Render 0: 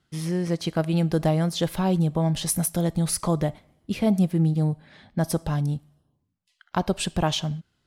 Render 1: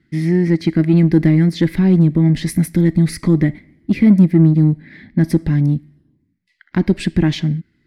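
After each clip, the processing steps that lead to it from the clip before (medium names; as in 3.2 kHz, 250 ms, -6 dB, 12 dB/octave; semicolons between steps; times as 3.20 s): FFT filter 110 Hz 0 dB, 320 Hz +9 dB, 470 Hz -7 dB, 710 Hz -14 dB, 1.3 kHz -11 dB, 2 kHz +9 dB, 2.9 kHz -10 dB, 4.6 kHz -6 dB, 6.5 kHz -14 dB; in parallel at -7 dB: saturation -21 dBFS, distortion -9 dB; on the sum: trim +5 dB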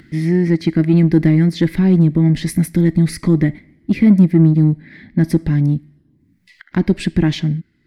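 upward compressor, threshold -33 dBFS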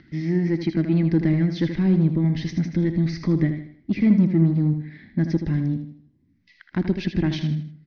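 steep low-pass 6.2 kHz 96 dB/octave; on a send: feedback delay 79 ms, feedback 39%, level -8.5 dB; on the sum: trim -7.5 dB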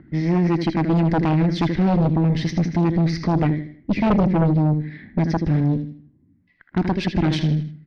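Chebyshev shaper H 4 -7 dB, 5 -8 dB, 6 -7 dB, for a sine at -8 dBFS; level-controlled noise filter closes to 940 Hz, open at -14.5 dBFS; trim -4 dB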